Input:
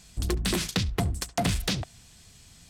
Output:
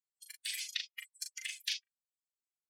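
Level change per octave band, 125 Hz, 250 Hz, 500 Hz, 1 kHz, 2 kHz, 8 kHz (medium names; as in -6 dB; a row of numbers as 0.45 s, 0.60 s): under -40 dB, under -40 dB, under -40 dB, under -35 dB, -7.5 dB, -8.5 dB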